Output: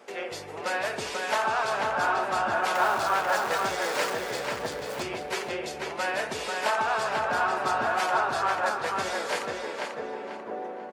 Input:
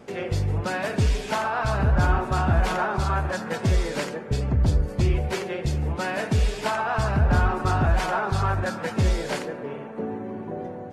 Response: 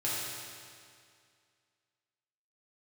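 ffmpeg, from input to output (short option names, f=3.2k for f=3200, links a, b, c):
-filter_complex "[0:a]asettb=1/sr,asplit=3[a][b][c];[a]atrim=end=2.754[d];[b]atrim=start=2.75:end=5.04,asetpts=PTS-STARTPTS,afade=t=in:d=0.004:c=qsin,afade=t=out:st=2.286:d=0.004:c=qsin,aeval=exprs='val(0)+0.5*0.0282*sgn(val(0))':c=same[e];[c]atrim=start=5.036[f];[d][e]acrossfade=d=0.004:c1=hsin:c2=qsin[g];[g][f]acrossfade=d=0.004:c1=qsin:c2=hsin,highpass=530,asplit=2[h][i];[i]adelay=491,lowpass=f=4.3k:p=1,volume=-3dB,asplit=2[j][k];[k]adelay=491,lowpass=f=4.3k:p=1,volume=0.36,asplit=2[l][m];[m]adelay=491,lowpass=f=4.3k:p=1,volume=0.36,asplit=2[n][o];[o]adelay=491,lowpass=f=4.3k:p=1,volume=0.36,asplit=2[p][q];[q]adelay=491,lowpass=f=4.3k:p=1,volume=0.36[r];[h][j][l][n][p][r]amix=inputs=6:normalize=0"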